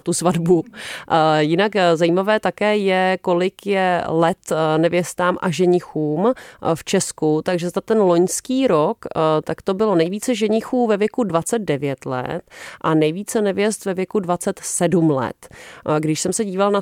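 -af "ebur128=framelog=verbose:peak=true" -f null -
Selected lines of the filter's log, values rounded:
Integrated loudness:
  I:         -18.9 LUFS
  Threshold: -29.1 LUFS
Loudness range:
  LRA:         3.2 LU
  Threshold: -39.1 LUFS
  LRA low:   -20.6 LUFS
  LRA high:  -17.5 LUFS
True peak:
  Peak:       -3.6 dBFS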